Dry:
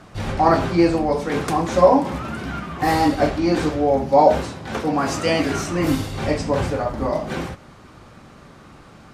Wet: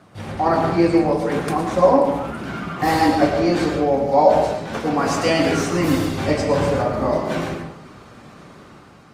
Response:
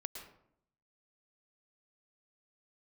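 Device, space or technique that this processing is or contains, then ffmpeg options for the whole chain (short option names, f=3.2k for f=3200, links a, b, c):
far-field microphone of a smart speaker: -filter_complex "[1:a]atrim=start_sample=2205[a];[0:a][a]afir=irnorm=-1:irlink=0,highpass=88,dynaudnorm=f=120:g=9:m=5dB" -ar 48000 -c:a libopus -b:a 32k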